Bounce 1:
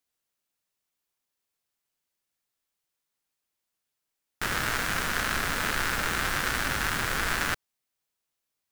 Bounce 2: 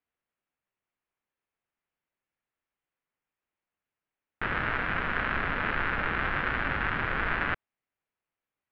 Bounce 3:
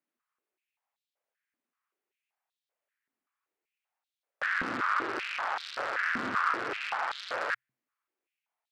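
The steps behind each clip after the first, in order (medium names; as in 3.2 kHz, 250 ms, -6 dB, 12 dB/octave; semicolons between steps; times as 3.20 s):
inverse Chebyshev low-pass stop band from 8 kHz, stop band 60 dB
saturation -24.5 dBFS, distortion -11 dB; frequency shift -130 Hz; step-sequenced high-pass 5.2 Hz 250–3700 Hz; trim -2 dB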